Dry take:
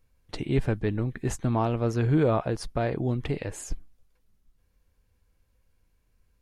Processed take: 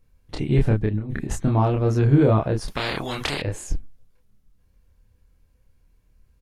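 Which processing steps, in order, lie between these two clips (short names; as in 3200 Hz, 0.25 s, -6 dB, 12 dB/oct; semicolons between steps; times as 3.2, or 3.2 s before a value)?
low shelf 360 Hz +6.5 dB; 0.86–1.33 negative-ratio compressor -27 dBFS, ratio -0.5; doubler 28 ms -2 dB; 2.68–3.42 spectral compressor 4:1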